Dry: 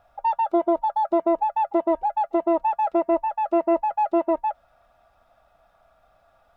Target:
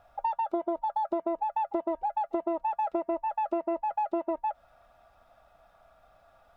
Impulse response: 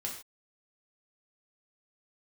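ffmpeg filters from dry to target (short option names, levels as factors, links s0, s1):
-af "acompressor=threshold=0.0447:ratio=6"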